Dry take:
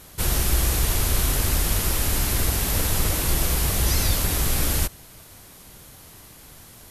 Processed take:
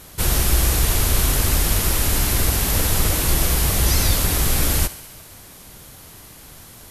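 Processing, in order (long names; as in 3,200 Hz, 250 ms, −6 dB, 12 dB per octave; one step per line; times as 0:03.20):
feedback echo with a high-pass in the loop 68 ms, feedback 72%, level −16 dB
level +3.5 dB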